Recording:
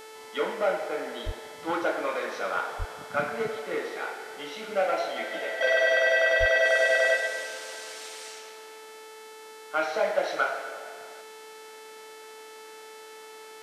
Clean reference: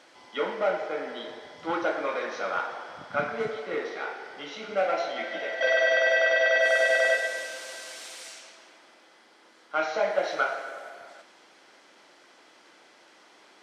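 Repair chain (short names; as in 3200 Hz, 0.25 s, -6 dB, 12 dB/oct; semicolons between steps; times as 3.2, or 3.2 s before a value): de-hum 438.1 Hz, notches 30; 1.25–1.37 HPF 140 Hz 24 dB/oct; 2.78–2.9 HPF 140 Hz 24 dB/oct; 6.39–6.51 HPF 140 Hz 24 dB/oct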